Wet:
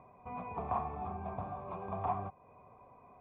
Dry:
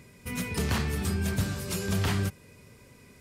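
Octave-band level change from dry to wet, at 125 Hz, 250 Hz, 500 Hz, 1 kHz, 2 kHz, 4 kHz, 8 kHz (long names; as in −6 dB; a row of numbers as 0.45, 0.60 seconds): −16.0 dB, −15.0 dB, −6.0 dB, +4.5 dB, −20.0 dB, below −35 dB, below −40 dB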